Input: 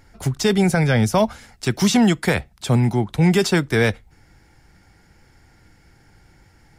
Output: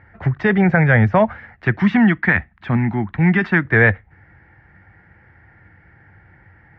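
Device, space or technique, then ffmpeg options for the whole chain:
bass cabinet: -filter_complex "[0:a]asettb=1/sr,asplit=3[s0][s1][s2];[s0]atrim=end=1.774[s3];[s1]atrim=start=1.77:end=3.65,asetpts=PTS-STARTPTS,afade=t=in:d=0.004:c=qsin,afade=t=out:st=1.876:d=0.004:c=qsin,equalizer=f=125:t=o:w=1:g=-7,equalizer=f=250:t=o:w=1:g=6,equalizer=f=500:t=o:w=1:g=-12[s4];[s2]atrim=start=3.646[s5];[s3][s4]acrossfade=d=0.004:c1=hsin:c2=qsin[s6];[s6][s5]acrossfade=d=0.004:c1=qsin:c2=hsin,highpass=69,equalizer=f=94:t=q:w=4:g=6,equalizer=f=260:t=q:w=4:g=-6,equalizer=f=410:t=q:w=4:g=-4,equalizer=f=1800:t=q:w=4:g=10,lowpass=f=2200:w=0.5412,lowpass=f=2200:w=1.3066,volume=1.5"

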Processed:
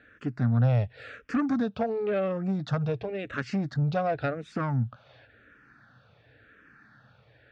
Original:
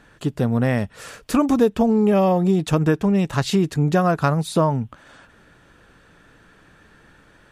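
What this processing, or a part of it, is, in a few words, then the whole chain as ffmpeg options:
barber-pole phaser into a guitar amplifier: -filter_complex "[0:a]asplit=2[s0][s1];[s1]afreqshift=-0.93[s2];[s0][s2]amix=inputs=2:normalize=1,asoftclip=type=tanh:threshold=0.168,highpass=85,equalizer=f=120:t=q:w=4:g=8,equalizer=f=170:t=q:w=4:g=-8,equalizer=f=360:t=q:w=4:g=-9,equalizer=f=970:t=q:w=4:g=-10,equalizer=f=1500:t=q:w=4:g=4,equalizer=f=3100:t=q:w=4:g=-6,lowpass=f=4200:w=0.5412,lowpass=f=4200:w=1.3066,volume=0.794"

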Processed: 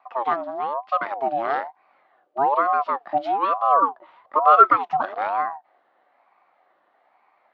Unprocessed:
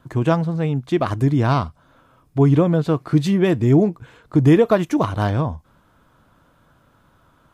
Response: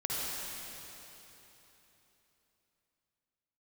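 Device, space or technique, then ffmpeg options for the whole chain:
voice changer toy: -filter_complex "[0:a]asettb=1/sr,asplit=3[s0][s1][s2];[s0]atrim=end=3.824[s3];[s1]atrim=start=3.82:end=5.01,asetpts=PTS-STARTPTS,afade=t=in:d=0.004:c=qsin,afade=t=out:st=1.186:d=0.004:c=qsin,equalizer=f=490:t=o:w=0.36:g=12.5[s4];[s2]atrim=start=5.006[s5];[s3][s4]acrossfade=d=0.004:c1=hsin:c2=qsin[s6];[s6][s5]acrossfade=d=0.004:c1=qsin:c2=hsin,aeval=exprs='val(0)*sin(2*PI*680*n/s+680*0.35/1.1*sin(2*PI*1.1*n/s))':c=same,highpass=400,equalizer=f=430:t=q:w=4:g=-6,equalizer=f=740:t=q:w=4:g=8,equalizer=f=1200:t=q:w=4:g=8,lowpass=f=3800:w=0.5412,lowpass=f=3800:w=1.3066,volume=0.501"

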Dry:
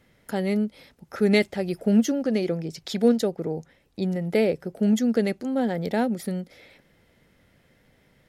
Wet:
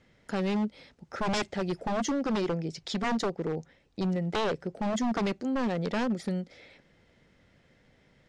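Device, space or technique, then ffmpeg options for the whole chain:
synthesiser wavefolder: -af "aeval=exprs='0.0891*(abs(mod(val(0)/0.0891+3,4)-2)-1)':c=same,lowpass=f=7500:w=0.5412,lowpass=f=7500:w=1.3066,volume=0.794"

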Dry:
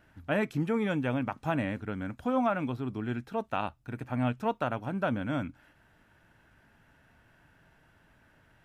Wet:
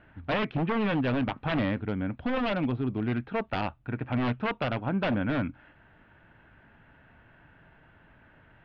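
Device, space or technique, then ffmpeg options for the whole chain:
synthesiser wavefolder: -filter_complex "[0:a]lowpass=3500,aeval=exprs='0.0473*(abs(mod(val(0)/0.0473+3,4)-2)-1)':c=same,lowpass=f=3500:w=0.5412,lowpass=f=3500:w=1.3066,asettb=1/sr,asplit=3[s0][s1][s2];[s0]atrim=end=1.794[s3];[s1]atrim=start=1.79:end=3.08,asetpts=PTS-STARTPTS,afade=t=in:d=0.004:c=qsin,afade=t=out:st=1.286:d=0.004:c=qsin,equalizer=f=1400:t=o:w=1.2:g=-5[s4];[s2]atrim=start=3.076[s5];[s3][s4]acrossfade=d=0.004:c1=hsin:c2=qsin[s6];[s6][s5]acrossfade=d=0.004:c1=qsin:c2=hsin,volume=1.88"

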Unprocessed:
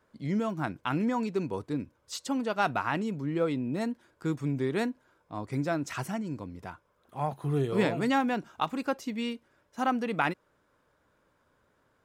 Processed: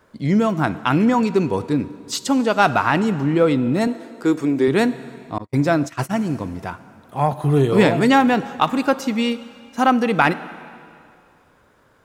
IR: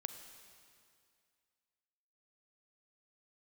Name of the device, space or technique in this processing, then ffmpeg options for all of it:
saturated reverb return: -filter_complex "[0:a]asplit=2[s0][s1];[1:a]atrim=start_sample=2205[s2];[s1][s2]afir=irnorm=-1:irlink=0,asoftclip=type=tanh:threshold=0.0944,volume=1.06[s3];[s0][s3]amix=inputs=2:normalize=0,asettb=1/sr,asplit=3[s4][s5][s6];[s4]atrim=end=3.874[s7];[s5]atrim=start=3.87:end=4.68,asetpts=PTS-STARTPTS,afade=t=in:d=0.004:c=qsin,afade=t=out:st=0.806:d=0.004:c=qsin,lowshelf=f=220:t=q:w=1.5:g=-9.5[s8];[s6]atrim=start=4.676[s9];[s7][s8]acrossfade=d=0.004:c1=hsin:c2=qsin[s10];[s10][s9]acrossfade=d=0.004:c1=qsin:c2=hsin,asettb=1/sr,asplit=3[s11][s12][s13];[s11]atrim=end=5.384[s14];[s12]atrim=start=5.38:end=6.22,asetpts=PTS-STARTPTS,afade=t=in:d=0.004:c=qsin,afade=t=out:st=0.836:d=0.004:c=qsin,agate=range=0.00447:threshold=0.0355:ratio=16:detection=peak[s15];[s13]atrim=start=6.216[s16];[s14][s15]acrossfade=d=0.004:c1=hsin:c2=qsin[s17];[s17][s16]acrossfade=d=0.004:c1=qsin:c2=hsin,volume=2.37"

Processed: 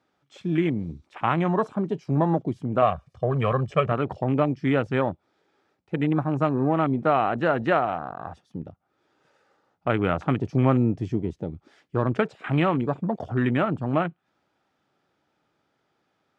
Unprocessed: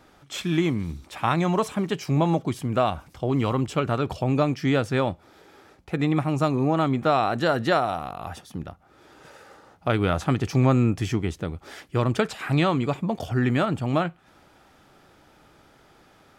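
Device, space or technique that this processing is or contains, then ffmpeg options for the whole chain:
over-cleaned archive recording: -filter_complex "[0:a]asettb=1/sr,asplit=3[s0][s1][s2];[s0]atrim=end=2.824[s3];[s1]atrim=start=2.82:end=3.92,asetpts=PTS-STARTPTS,afade=t=in:d=0.004:c=qsin,afade=t=out:st=1.096:d=0.004:c=qsin,aecho=1:1:1.7:0.87,atrim=end_sample=48510[s4];[s2]atrim=start=3.916[s5];[s3][s4]acrossfade=d=0.004:c1=hsin:c2=qsin[s6];[s6][s5]acrossfade=d=0.004:c1=qsin:c2=hsin,highpass=110,lowpass=6500,afwtdn=0.0224"

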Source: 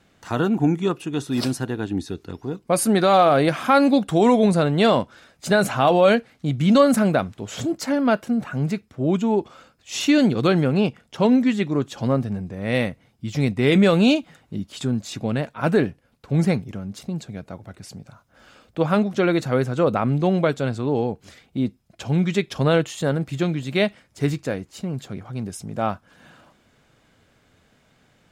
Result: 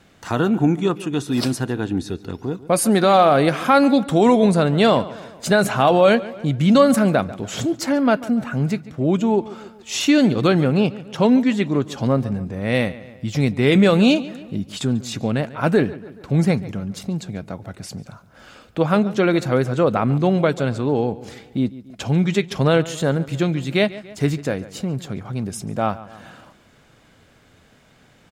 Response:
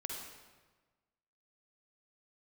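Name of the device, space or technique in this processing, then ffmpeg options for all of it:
parallel compression: -filter_complex "[0:a]asplit=2[s0][s1];[s1]adelay=142,lowpass=f=4200:p=1,volume=0.126,asplit=2[s2][s3];[s3]adelay=142,lowpass=f=4200:p=1,volume=0.45,asplit=2[s4][s5];[s5]adelay=142,lowpass=f=4200:p=1,volume=0.45,asplit=2[s6][s7];[s7]adelay=142,lowpass=f=4200:p=1,volume=0.45[s8];[s0][s2][s4][s6][s8]amix=inputs=5:normalize=0,asplit=2[s9][s10];[s10]acompressor=threshold=0.0224:ratio=6,volume=0.75[s11];[s9][s11]amix=inputs=2:normalize=0,volume=1.12"

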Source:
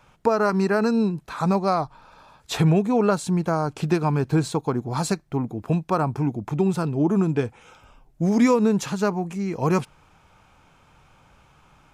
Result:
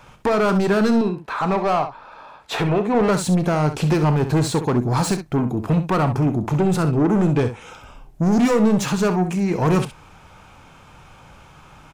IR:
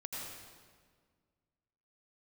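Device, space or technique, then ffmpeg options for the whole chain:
saturation between pre-emphasis and de-emphasis: -filter_complex "[0:a]asettb=1/sr,asplit=3[s0][s1][s2];[s0]atrim=end=1.014[s3];[s1]atrim=start=1.01:end=2.95,asetpts=PTS-STARTPTS,afade=t=in:d=0.004:c=qsin,afade=t=out:st=1.936:d=0.004:c=qsin,bass=f=250:g=-13,treble=f=4000:g=-13[s4];[s2]atrim=start=2.946[s5];[s3][s4]acrossfade=d=0.004:c1=hsin:c2=qsin[s6];[s6][s5]acrossfade=d=0.004:c1=qsin:c2=hsin,highshelf=f=2300:g=10.5,asoftclip=type=tanh:threshold=0.0708,highshelf=f=2300:g=-10.5,aecho=1:1:33|65:0.188|0.299,volume=2.82"

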